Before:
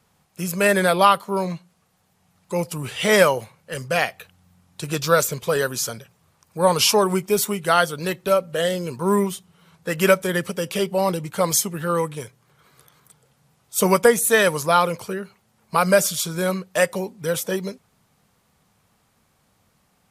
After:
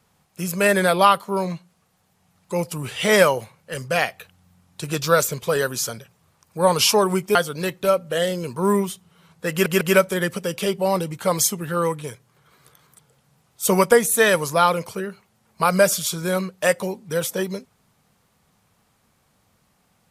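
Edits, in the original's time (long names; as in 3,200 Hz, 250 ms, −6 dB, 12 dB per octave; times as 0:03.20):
0:07.35–0:07.78: remove
0:09.94: stutter 0.15 s, 3 plays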